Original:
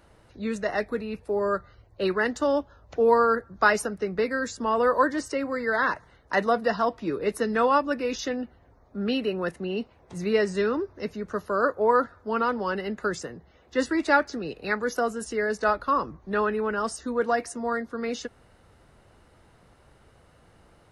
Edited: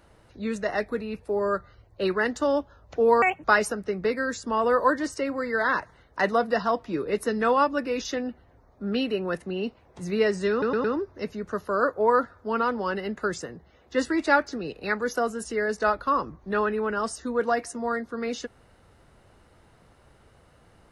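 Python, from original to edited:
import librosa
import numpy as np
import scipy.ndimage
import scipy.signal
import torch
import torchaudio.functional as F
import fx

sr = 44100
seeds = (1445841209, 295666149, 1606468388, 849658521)

y = fx.edit(x, sr, fx.speed_span(start_s=3.22, length_s=0.36, speed=1.62),
    fx.stutter(start_s=10.65, slice_s=0.11, count=4), tone=tone)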